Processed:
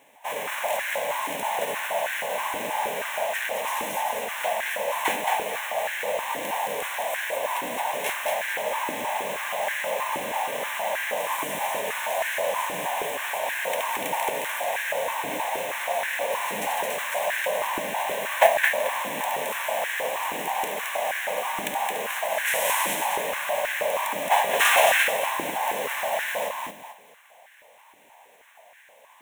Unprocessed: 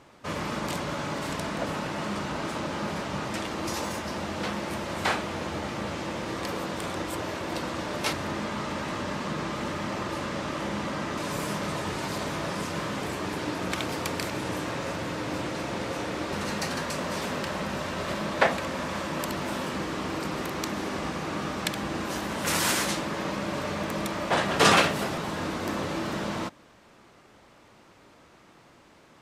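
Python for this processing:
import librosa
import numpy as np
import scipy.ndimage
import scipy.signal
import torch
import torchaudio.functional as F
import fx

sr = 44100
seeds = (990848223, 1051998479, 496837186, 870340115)

p1 = fx.envelope_flatten(x, sr, power=0.6)
p2 = fx.schmitt(p1, sr, flips_db=-32.0)
p3 = p1 + F.gain(torch.from_numpy(p2), -8.5).numpy()
p4 = fx.mod_noise(p3, sr, seeds[0], snr_db=12)
p5 = fx.fixed_phaser(p4, sr, hz=1300.0, stages=6)
p6 = p5 + fx.echo_feedback(p5, sr, ms=219, feedback_pct=33, wet_db=-3.5, dry=0)
y = fx.filter_held_highpass(p6, sr, hz=6.3, low_hz=330.0, high_hz=1600.0)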